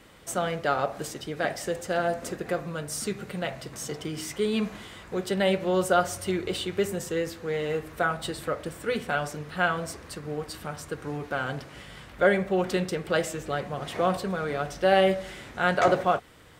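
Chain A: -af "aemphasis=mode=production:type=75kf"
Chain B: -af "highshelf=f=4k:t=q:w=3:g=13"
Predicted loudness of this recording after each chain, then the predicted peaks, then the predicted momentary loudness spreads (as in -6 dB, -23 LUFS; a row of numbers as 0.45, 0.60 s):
-26.0, -24.0 LUFS; -6.0, -5.0 dBFS; 10, 10 LU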